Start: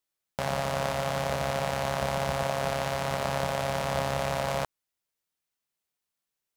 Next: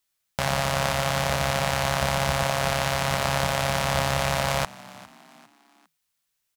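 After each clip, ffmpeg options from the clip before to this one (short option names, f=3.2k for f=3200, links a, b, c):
-filter_complex "[0:a]equalizer=f=400:t=o:w=2.5:g=-8.5,asplit=4[a][b][c][d];[b]adelay=403,afreqshift=51,volume=-20dB[e];[c]adelay=806,afreqshift=102,volume=-27.5dB[f];[d]adelay=1209,afreqshift=153,volume=-35.1dB[g];[a][e][f][g]amix=inputs=4:normalize=0,volume=9dB"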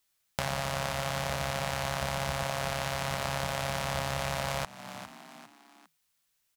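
-af "acompressor=threshold=-33dB:ratio=2.5,volume=1.5dB"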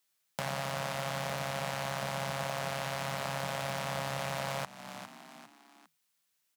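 -filter_complex "[0:a]asplit=2[a][b];[b]aeval=exprs='0.0944*(abs(mod(val(0)/0.0944+3,4)-2)-1)':c=same,volume=-4.5dB[c];[a][c]amix=inputs=2:normalize=0,highpass=f=120:w=0.5412,highpass=f=120:w=1.3066,volume=-6dB"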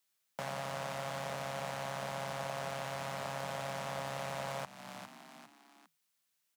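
-filter_complex "[0:a]acrossover=split=210|930[a][b][c];[a]alimiter=level_in=20.5dB:limit=-24dB:level=0:latency=1,volume=-20.5dB[d];[c]asoftclip=type=tanh:threshold=-32.5dB[e];[d][b][e]amix=inputs=3:normalize=0,volume=-2.5dB"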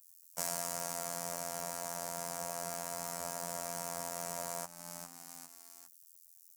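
-af "afftfilt=real='hypot(re,im)*cos(PI*b)':imag='0':win_size=2048:overlap=0.75,aexciter=amount=12.2:drive=3.1:freq=5.1k,adynamicequalizer=threshold=0.00158:dfrequency=1800:dqfactor=0.7:tfrequency=1800:tqfactor=0.7:attack=5:release=100:ratio=0.375:range=3.5:mode=cutabove:tftype=highshelf,volume=1dB"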